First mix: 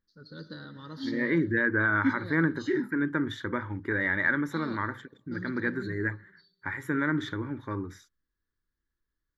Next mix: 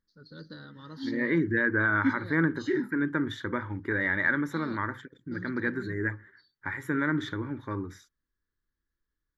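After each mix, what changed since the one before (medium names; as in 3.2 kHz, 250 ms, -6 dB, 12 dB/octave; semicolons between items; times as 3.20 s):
reverb: off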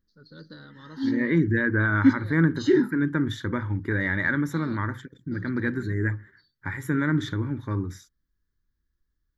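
second voice: add tone controls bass +10 dB, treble +8 dB; background +9.0 dB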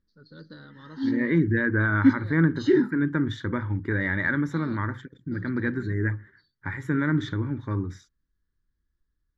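master: add distance through air 87 m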